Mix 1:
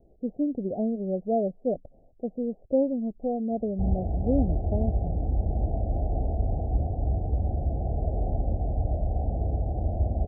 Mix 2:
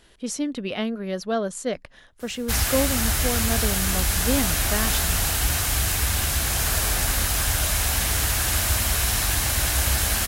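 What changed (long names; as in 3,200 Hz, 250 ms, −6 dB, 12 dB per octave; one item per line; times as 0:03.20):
background: entry −1.30 s
master: remove Butterworth low-pass 770 Hz 96 dB per octave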